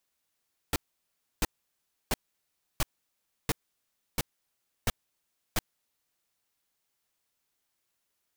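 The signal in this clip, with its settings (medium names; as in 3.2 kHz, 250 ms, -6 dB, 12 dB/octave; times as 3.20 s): noise bursts pink, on 0.03 s, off 0.66 s, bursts 8, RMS -26 dBFS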